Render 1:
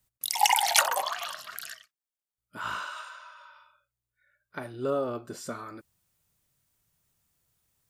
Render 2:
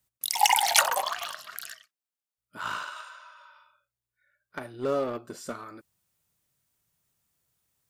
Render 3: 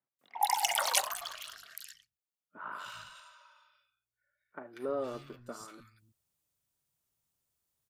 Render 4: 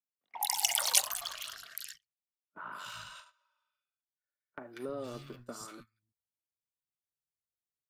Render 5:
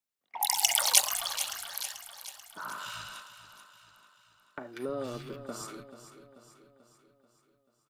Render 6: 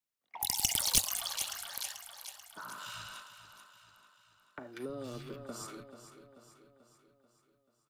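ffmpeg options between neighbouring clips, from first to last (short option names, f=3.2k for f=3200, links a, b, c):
-filter_complex "[0:a]lowshelf=f=70:g=-9,asplit=2[a][b];[b]acrusher=bits=4:mix=0:aa=0.5,volume=-9dB[c];[a][c]amix=inputs=2:normalize=0,volume=-1.5dB"
-filter_complex "[0:a]acrossover=split=160|1800[a][b][c];[c]adelay=190[d];[a]adelay=310[e];[e][b][d]amix=inputs=3:normalize=0,volume=-6.5dB"
-filter_complex "[0:a]agate=range=-22dB:threshold=-53dB:ratio=16:detection=peak,acrossover=split=220|3000[a][b][c];[b]acompressor=threshold=-50dB:ratio=2[d];[a][d][c]amix=inputs=3:normalize=0,volume=4dB"
-af "aecho=1:1:437|874|1311|1748|2185|2622:0.251|0.133|0.0706|0.0374|0.0198|0.0105,volume=4dB"
-filter_complex "[0:a]acrossover=split=270|800|3500[a][b][c][d];[d]aeval=exprs='clip(val(0),-1,0.0841)':c=same[e];[a][b][c][e]amix=inputs=4:normalize=0,acrossover=split=330|3000[f][g][h];[g]acompressor=threshold=-40dB:ratio=6[i];[f][i][h]amix=inputs=3:normalize=0,equalizer=f=90:t=o:w=0.3:g=5.5,volume=-2.5dB"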